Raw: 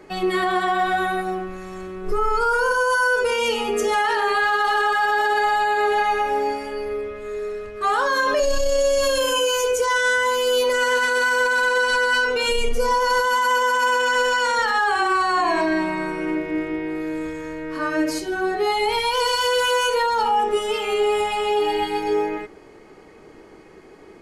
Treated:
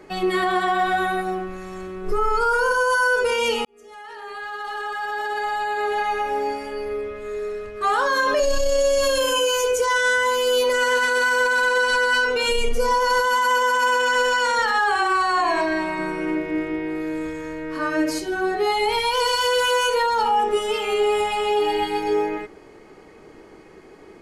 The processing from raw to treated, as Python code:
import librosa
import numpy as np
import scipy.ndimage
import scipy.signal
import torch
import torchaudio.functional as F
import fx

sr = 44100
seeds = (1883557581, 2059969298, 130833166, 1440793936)

y = fx.peak_eq(x, sr, hz=230.0, db=-11.0, octaves=0.65, at=(14.96, 15.99))
y = fx.edit(y, sr, fx.fade_in_span(start_s=3.65, length_s=3.48), tone=tone)